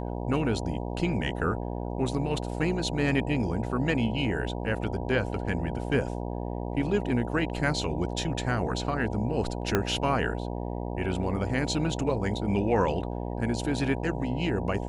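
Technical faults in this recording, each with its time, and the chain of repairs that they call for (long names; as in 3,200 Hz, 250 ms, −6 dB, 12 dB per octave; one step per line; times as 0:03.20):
mains buzz 60 Hz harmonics 16 −33 dBFS
0:09.75: click −9 dBFS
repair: click removal
hum removal 60 Hz, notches 16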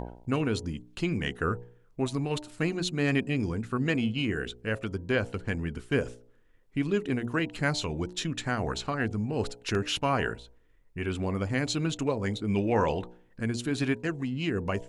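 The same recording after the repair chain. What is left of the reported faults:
0:09.75: click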